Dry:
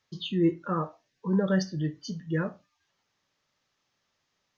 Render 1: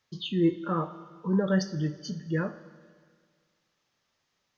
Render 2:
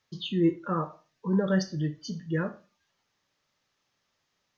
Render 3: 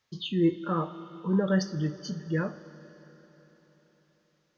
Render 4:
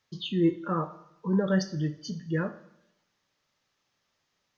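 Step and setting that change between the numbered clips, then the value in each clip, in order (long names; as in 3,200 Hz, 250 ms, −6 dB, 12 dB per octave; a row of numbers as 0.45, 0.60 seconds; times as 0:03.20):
four-comb reverb, RT60: 1.8, 0.38, 4.2, 0.84 seconds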